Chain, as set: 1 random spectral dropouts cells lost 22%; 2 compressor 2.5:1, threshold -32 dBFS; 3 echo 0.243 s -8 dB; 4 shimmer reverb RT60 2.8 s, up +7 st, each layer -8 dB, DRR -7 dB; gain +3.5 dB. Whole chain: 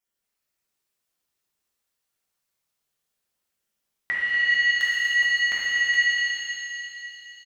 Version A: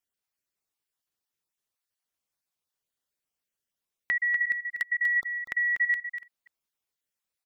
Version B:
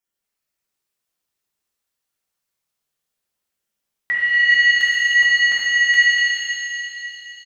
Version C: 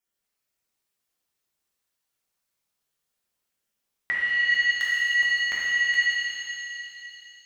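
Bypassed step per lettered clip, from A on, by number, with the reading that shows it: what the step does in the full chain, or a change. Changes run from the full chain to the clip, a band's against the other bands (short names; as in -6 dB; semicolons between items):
4, loudness change -5.0 LU; 2, mean gain reduction 5.0 dB; 3, momentary loudness spread change +1 LU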